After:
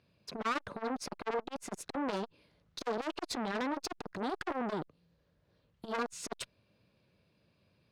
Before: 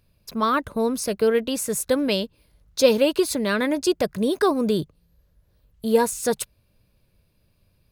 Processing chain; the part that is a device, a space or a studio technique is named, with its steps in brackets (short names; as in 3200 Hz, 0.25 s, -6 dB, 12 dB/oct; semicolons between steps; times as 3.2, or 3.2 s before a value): valve radio (BPF 150–4500 Hz; tube stage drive 26 dB, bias 0.35; core saturation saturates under 840 Hz)